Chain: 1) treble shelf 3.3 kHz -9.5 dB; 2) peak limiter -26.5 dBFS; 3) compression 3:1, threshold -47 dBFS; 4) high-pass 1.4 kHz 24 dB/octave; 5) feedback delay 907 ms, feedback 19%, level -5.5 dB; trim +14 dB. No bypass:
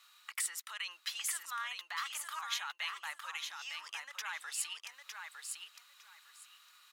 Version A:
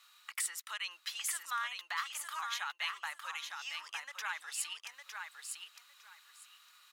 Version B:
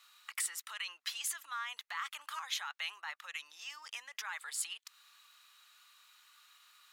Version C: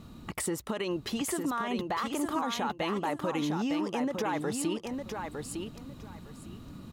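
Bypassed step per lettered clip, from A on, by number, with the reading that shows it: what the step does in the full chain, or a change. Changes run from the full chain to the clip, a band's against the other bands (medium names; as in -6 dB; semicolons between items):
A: 2, mean gain reduction 2.0 dB; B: 5, momentary loudness spread change -11 LU; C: 4, 500 Hz band +33.0 dB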